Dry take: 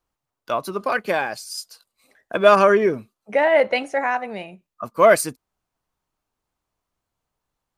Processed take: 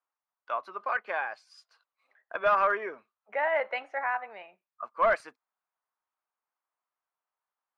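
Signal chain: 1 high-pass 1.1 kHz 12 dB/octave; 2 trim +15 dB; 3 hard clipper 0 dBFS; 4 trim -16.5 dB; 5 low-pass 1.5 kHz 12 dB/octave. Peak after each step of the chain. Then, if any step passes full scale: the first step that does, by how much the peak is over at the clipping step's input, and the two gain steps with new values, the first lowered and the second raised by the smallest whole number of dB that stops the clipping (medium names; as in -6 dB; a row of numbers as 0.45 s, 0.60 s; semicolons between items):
-6.5 dBFS, +8.5 dBFS, 0.0 dBFS, -16.5 dBFS, -16.0 dBFS; step 2, 8.5 dB; step 2 +6 dB, step 4 -7.5 dB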